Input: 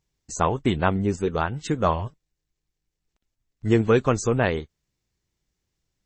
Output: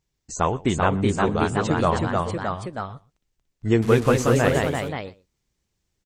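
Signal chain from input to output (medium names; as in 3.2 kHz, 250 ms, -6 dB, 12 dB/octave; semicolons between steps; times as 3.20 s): 3.82–4.35 s: one-bit delta coder 64 kbps, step -31.5 dBFS; ever faster or slower copies 410 ms, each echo +1 st, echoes 3; echo from a far wall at 21 m, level -22 dB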